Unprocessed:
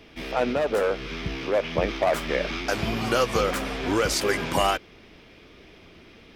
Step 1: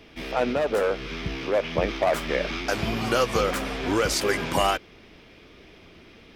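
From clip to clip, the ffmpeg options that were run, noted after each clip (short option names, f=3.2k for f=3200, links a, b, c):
-af anull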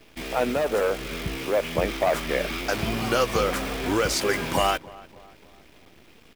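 -filter_complex "[0:a]acrusher=bits=7:dc=4:mix=0:aa=0.000001,asplit=2[a][b];[b]adelay=294,lowpass=f=1.5k:p=1,volume=-20dB,asplit=2[c][d];[d]adelay=294,lowpass=f=1.5k:p=1,volume=0.52,asplit=2[e][f];[f]adelay=294,lowpass=f=1.5k:p=1,volume=0.52,asplit=2[g][h];[h]adelay=294,lowpass=f=1.5k:p=1,volume=0.52[i];[a][c][e][g][i]amix=inputs=5:normalize=0"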